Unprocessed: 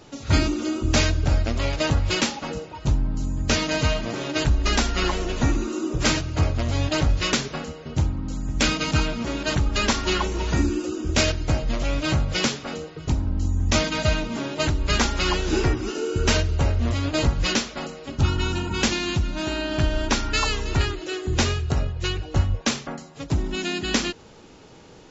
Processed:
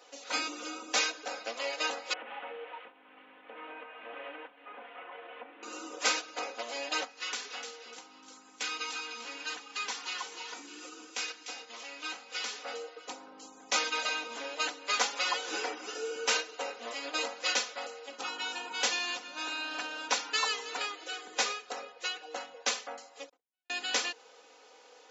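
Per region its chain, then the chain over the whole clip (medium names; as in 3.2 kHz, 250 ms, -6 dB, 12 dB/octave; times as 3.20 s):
2.13–5.63 s: one-bit delta coder 16 kbps, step -33.5 dBFS + compression 12:1, threshold -29 dBFS
7.04–12.59 s: peaking EQ 590 Hz -12 dB 0.39 oct + compression 2:1, threshold -30 dBFS + feedback echo behind a high-pass 299 ms, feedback 34%, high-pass 2.4 kHz, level -7 dB
23.29–23.70 s: gate -17 dBFS, range -57 dB + tone controls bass -6 dB, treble -8 dB + compression, threshold -50 dBFS
whole clip: high-pass 470 Hz 24 dB/octave; comb 4 ms, depth 87%; trim -7.5 dB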